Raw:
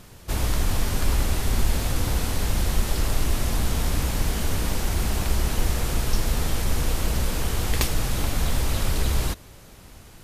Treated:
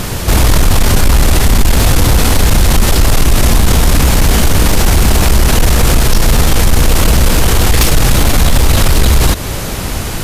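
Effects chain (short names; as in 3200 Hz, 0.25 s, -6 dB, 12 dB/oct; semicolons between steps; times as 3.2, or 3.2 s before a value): in parallel at +0.5 dB: compressor, threshold -30 dBFS, peak gain reduction 15 dB; on the sum: soft clip -15 dBFS, distortion -16 dB; maximiser +23 dB; gain -1 dB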